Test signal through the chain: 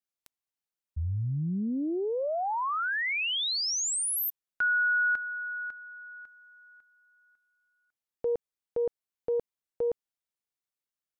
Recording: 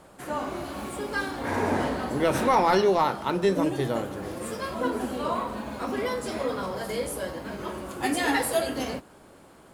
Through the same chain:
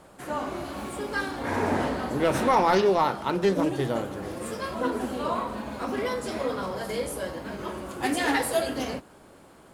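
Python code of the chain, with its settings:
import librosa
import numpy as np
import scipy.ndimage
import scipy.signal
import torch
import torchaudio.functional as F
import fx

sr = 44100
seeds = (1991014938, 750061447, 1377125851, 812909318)

y = fx.doppler_dist(x, sr, depth_ms=0.14)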